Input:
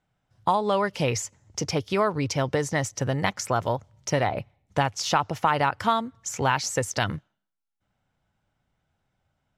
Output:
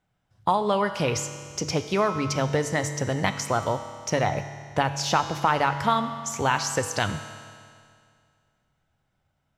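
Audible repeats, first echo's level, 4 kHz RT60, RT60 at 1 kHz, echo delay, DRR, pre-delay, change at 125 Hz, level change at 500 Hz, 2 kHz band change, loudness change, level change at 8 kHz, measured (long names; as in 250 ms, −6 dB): no echo audible, no echo audible, 2.1 s, 2.2 s, no echo audible, 8.0 dB, 6 ms, 0.0 dB, +0.5 dB, +1.0 dB, +0.5 dB, +0.5 dB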